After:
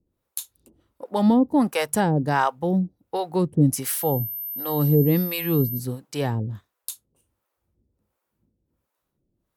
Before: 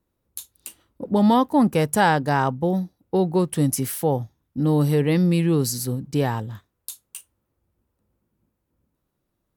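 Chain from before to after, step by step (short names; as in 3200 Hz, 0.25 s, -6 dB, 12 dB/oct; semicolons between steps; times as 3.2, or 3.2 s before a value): harmonic tremolo 1.4 Hz, depth 100%, crossover 530 Hz; 3.97–5.78 whine 13000 Hz -33 dBFS; gain +4 dB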